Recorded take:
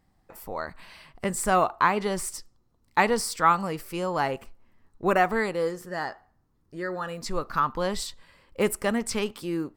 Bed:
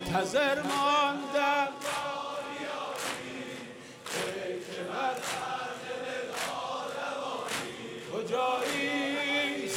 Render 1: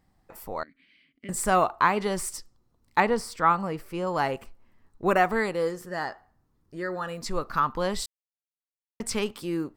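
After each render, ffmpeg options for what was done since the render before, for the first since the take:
ffmpeg -i in.wav -filter_complex "[0:a]asettb=1/sr,asplit=3[link_01][link_02][link_03];[link_01]atrim=end=0.634[link_04];[link_02]atrim=start=0.63:end=1.29,asetpts=PTS-STARTPTS,afade=type=in:duration=0.004:curve=qsin,afade=type=out:start_time=0.656:duration=0.004:curve=qsin,asplit=3[link_05][link_06][link_07];[link_05]bandpass=frequency=270:width_type=q:width=8,volume=0dB[link_08];[link_06]bandpass=frequency=2290:width_type=q:width=8,volume=-6dB[link_09];[link_07]bandpass=frequency=3010:width_type=q:width=8,volume=-9dB[link_10];[link_08][link_09][link_10]amix=inputs=3:normalize=0[link_11];[link_03]atrim=start=1.286[link_12];[link_04][link_11]acrossfade=duration=0.004:curve1=hsin:curve2=qsin[link_13];[link_13][link_12]acrossfade=duration=0.004:curve1=qsin:curve2=hsin,asettb=1/sr,asplit=3[link_14][link_15][link_16];[link_14]atrim=end=3.004[link_17];[link_15]atrim=start=3:end=4.07,asetpts=PTS-STARTPTS,afade=type=in:duration=0.004:curve=qsin,afade=type=out:start_time=1.066:duration=0.004:curve=qsin,highshelf=frequency=3100:gain=-10[link_18];[link_16]atrim=start=4.066[link_19];[link_17][link_18]acrossfade=duration=0.004:curve1=hsin:curve2=qsin[link_20];[link_20][link_19]acrossfade=duration=0.004:curve1=qsin:curve2=hsin,asplit=3[link_21][link_22][link_23];[link_21]atrim=end=8.06,asetpts=PTS-STARTPTS,afade=type=out:start_time=8.056:duration=0.004:curve=hsin[link_24];[link_22]atrim=start=8.06:end=9,asetpts=PTS-STARTPTS,volume=0[link_25];[link_23]atrim=start=9,asetpts=PTS-STARTPTS,afade=type=in:duration=0.004:curve=hsin[link_26];[link_24][link_25][link_26]concat=n=3:v=0:a=1" out.wav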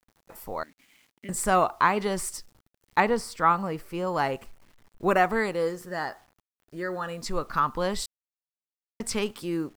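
ffmpeg -i in.wav -af "acrusher=bits=9:mix=0:aa=0.000001" out.wav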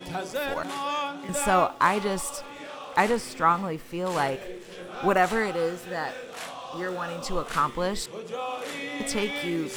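ffmpeg -i in.wav -i bed.wav -filter_complex "[1:a]volume=-3.5dB[link_01];[0:a][link_01]amix=inputs=2:normalize=0" out.wav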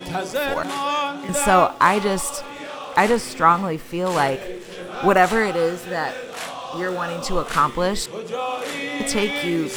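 ffmpeg -i in.wav -af "volume=6.5dB,alimiter=limit=-2dB:level=0:latency=1" out.wav

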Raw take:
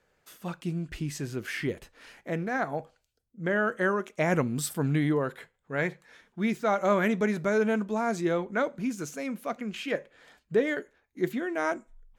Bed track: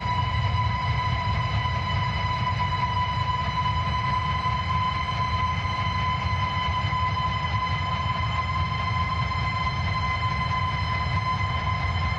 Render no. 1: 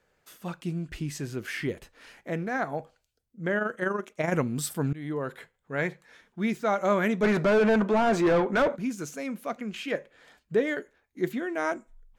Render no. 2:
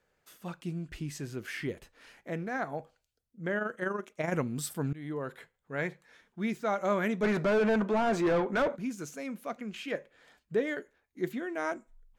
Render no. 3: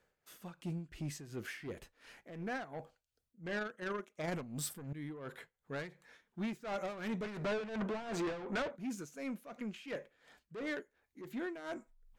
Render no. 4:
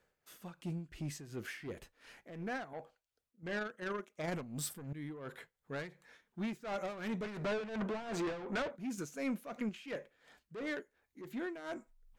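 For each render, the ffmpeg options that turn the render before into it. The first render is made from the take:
ffmpeg -i in.wav -filter_complex "[0:a]asettb=1/sr,asplit=3[link_01][link_02][link_03];[link_01]atrim=end=3.584[link_04];[link_02]atrim=start=3.58:end=4.34,asetpts=PTS-STARTPTS,afade=type=in:duration=0.004:curve=qsin,afade=type=out:start_time=0.756:duration=0.004:curve=qsin,tremolo=f=24:d=0.571[link_05];[link_03]atrim=start=4.336[link_06];[link_04][link_05]acrossfade=duration=0.004:curve1=hsin:curve2=qsin[link_07];[link_07][link_06]acrossfade=duration=0.004:curve1=qsin:curve2=hsin,asplit=3[link_08][link_09][link_10];[link_08]afade=type=out:start_time=7.22:duration=0.02[link_11];[link_09]asplit=2[link_12][link_13];[link_13]highpass=frequency=720:poles=1,volume=26dB,asoftclip=type=tanh:threshold=-14dB[link_14];[link_12][link_14]amix=inputs=2:normalize=0,lowpass=frequency=1200:poles=1,volume=-6dB,afade=type=in:start_time=7.22:duration=0.02,afade=type=out:start_time=8.75:duration=0.02[link_15];[link_10]afade=type=in:start_time=8.75:duration=0.02[link_16];[link_11][link_15][link_16]amix=inputs=3:normalize=0,asplit=2[link_17][link_18];[link_17]atrim=end=4.93,asetpts=PTS-STARTPTS,afade=type=out:start_time=4.926:duration=0.004:curve=hsin:silence=0.0707946[link_19];[link_18]atrim=start=4.93,asetpts=PTS-STARTPTS,afade=type=in:duration=0.43:silence=0.0707946[link_20];[link_19][link_20]concat=n=2:v=0:a=1" out.wav
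ffmpeg -i in.wav -af "volume=-4.5dB" out.wav
ffmpeg -i in.wav -af "asoftclip=type=tanh:threshold=-32.5dB,tremolo=f=2.8:d=0.73" out.wav
ffmpeg -i in.wav -filter_complex "[0:a]asettb=1/sr,asplit=3[link_01][link_02][link_03];[link_01]atrim=end=2.734[link_04];[link_02]atrim=start=2.73:end=3.43,asetpts=PTS-STARTPTS,afade=type=in:duration=0.004:curve=qsin,afade=type=out:start_time=0.696:duration=0.004:curve=qsin,bass=frequency=250:gain=-8,treble=frequency=4000:gain=-4[link_05];[link_03]atrim=start=3.426[link_06];[link_04][link_05]acrossfade=duration=0.004:curve1=hsin:curve2=qsin[link_07];[link_07][link_06]acrossfade=duration=0.004:curve1=qsin:curve2=hsin,asplit=3[link_08][link_09][link_10];[link_08]atrim=end=8.982[link_11];[link_09]atrim=start=8.978:end=9.692,asetpts=PTS-STARTPTS,volume=4.5dB[link_12];[link_10]atrim=start=9.688[link_13];[link_11][link_12]acrossfade=duration=0.004:curve1=hsin:curve2=hsin[link_14];[link_14][link_13]acrossfade=duration=0.004:curve1=hsin:curve2=hsin" out.wav

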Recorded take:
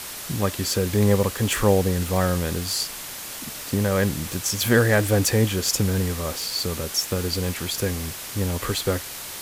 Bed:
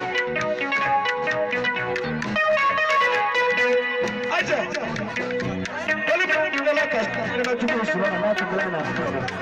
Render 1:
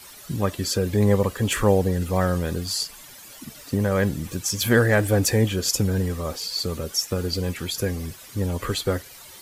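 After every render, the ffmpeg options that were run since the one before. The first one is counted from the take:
ffmpeg -i in.wav -af "afftdn=noise_reduction=13:noise_floor=-35" out.wav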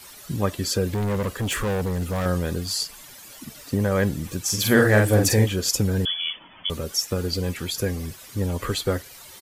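ffmpeg -i in.wav -filter_complex "[0:a]asettb=1/sr,asplit=3[link_01][link_02][link_03];[link_01]atrim=end=0.904[link_04];[link_02]atrim=start=0.9:end=2.26,asetpts=PTS-STARTPTS,afade=type=in:duration=0.004:curve=qsin,afade=type=out:start_time=1.356:duration=0.004:curve=qsin,asoftclip=type=hard:threshold=-22dB[link_05];[link_03]atrim=start=2.256[link_06];[link_04][link_05]acrossfade=duration=0.004:curve1=hsin:curve2=qsin[link_07];[link_07][link_06]acrossfade=duration=0.004:curve1=qsin:curve2=hsin,asplit=3[link_08][link_09][link_10];[link_08]afade=type=out:start_time=4.47:duration=0.02[link_11];[link_09]asplit=2[link_12][link_13];[link_13]adelay=47,volume=-3.5dB[link_14];[link_12][link_14]amix=inputs=2:normalize=0,afade=type=in:start_time=4.47:duration=0.02,afade=type=out:start_time=5.45:duration=0.02[link_15];[link_10]afade=type=in:start_time=5.45:duration=0.02[link_16];[link_11][link_15][link_16]amix=inputs=3:normalize=0,asettb=1/sr,asplit=3[link_17][link_18][link_19];[link_17]atrim=end=6.054[link_20];[link_18]atrim=start=6.05:end=6.7,asetpts=PTS-STARTPTS,afade=type=in:duration=0.004:curve=qsin,afade=type=out:start_time=0.646:duration=0.004:curve=qsin,lowpass=frequency=3000:width_type=q:width=0.5098,lowpass=frequency=3000:width_type=q:width=0.6013,lowpass=frequency=3000:width_type=q:width=0.9,lowpass=frequency=3000:width_type=q:width=2.563,afreqshift=-3500[link_21];[link_19]atrim=start=6.696[link_22];[link_20][link_21]acrossfade=duration=0.004:curve1=hsin:curve2=qsin[link_23];[link_23][link_22]acrossfade=duration=0.004:curve1=qsin:curve2=hsin" out.wav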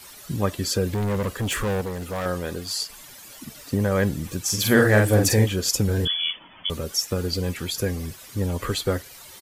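ffmpeg -i in.wav -filter_complex "[0:a]asettb=1/sr,asplit=3[link_01][link_02][link_03];[link_01]atrim=end=1.814[link_04];[link_02]atrim=start=1.81:end=2.9,asetpts=PTS-STARTPTS,afade=type=in:duration=0.004:curve=qsin,afade=type=out:start_time=1.086:duration=0.004:curve=qsin,bass=frequency=250:gain=-8,treble=frequency=4000:gain=-2[link_05];[link_03]atrim=start=2.896[link_06];[link_04][link_05]acrossfade=duration=0.004:curve1=hsin:curve2=qsin[link_07];[link_07][link_06]acrossfade=duration=0.004:curve1=qsin:curve2=hsin,asettb=1/sr,asplit=3[link_08][link_09][link_10];[link_08]atrim=end=5.864[link_11];[link_09]atrim=start=5.86:end=6.31,asetpts=PTS-STARTPTS,afade=type=in:duration=0.004:curve=qsin,afade=type=out:start_time=0.446:duration=0.004:curve=qsin,asplit=2[link_12][link_13];[link_13]adelay=24,volume=-6dB[link_14];[link_12][link_14]amix=inputs=2:normalize=0,atrim=end_sample=19845[link_15];[link_10]atrim=start=6.306[link_16];[link_11][link_15]acrossfade=duration=0.004:curve1=hsin:curve2=qsin[link_17];[link_17][link_16]acrossfade=duration=0.004:curve1=qsin:curve2=hsin" out.wav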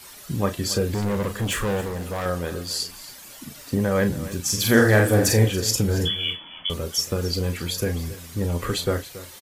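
ffmpeg -i in.wav -filter_complex "[0:a]asplit=2[link_01][link_02];[link_02]adelay=35,volume=-9dB[link_03];[link_01][link_03]amix=inputs=2:normalize=0,aecho=1:1:278:0.158" out.wav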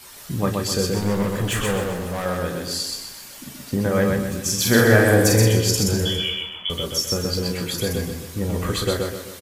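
ffmpeg -i in.wav -filter_complex "[0:a]asplit=2[link_01][link_02];[link_02]adelay=16,volume=-11dB[link_03];[link_01][link_03]amix=inputs=2:normalize=0,aecho=1:1:126|252|378|504|630:0.708|0.262|0.0969|0.0359|0.0133" out.wav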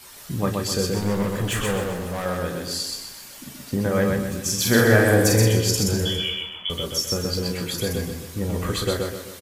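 ffmpeg -i in.wav -af "volume=-1.5dB" out.wav

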